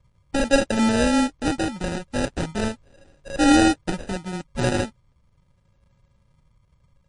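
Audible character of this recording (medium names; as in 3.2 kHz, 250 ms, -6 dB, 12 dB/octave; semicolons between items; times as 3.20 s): a buzz of ramps at a fixed pitch in blocks of 16 samples; phasing stages 6, 0.38 Hz, lowest notch 530–1100 Hz; aliases and images of a low sample rate 1.1 kHz, jitter 0%; MP3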